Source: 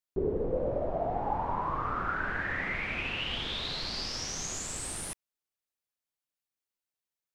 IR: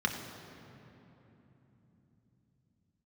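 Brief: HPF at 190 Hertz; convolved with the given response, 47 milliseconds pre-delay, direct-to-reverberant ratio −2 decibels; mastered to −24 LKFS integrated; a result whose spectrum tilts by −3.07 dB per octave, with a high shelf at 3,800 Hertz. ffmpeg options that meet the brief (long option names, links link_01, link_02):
-filter_complex "[0:a]highpass=190,highshelf=frequency=3800:gain=-3,asplit=2[link_01][link_02];[1:a]atrim=start_sample=2205,adelay=47[link_03];[link_02][link_03]afir=irnorm=-1:irlink=0,volume=-6dB[link_04];[link_01][link_04]amix=inputs=2:normalize=0,volume=5.5dB"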